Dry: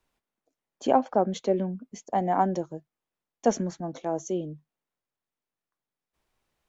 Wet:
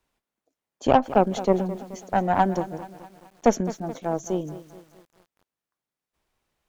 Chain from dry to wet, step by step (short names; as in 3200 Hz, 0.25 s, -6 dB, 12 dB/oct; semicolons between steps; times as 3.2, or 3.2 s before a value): added harmonics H 4 -17 dB, 7 -30 dB, 8 -43 dB, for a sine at -8 dBFS; lo-fi delay 0.214 s, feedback 55%, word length 8-bit, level -14.5 dB; gain +3.5 dB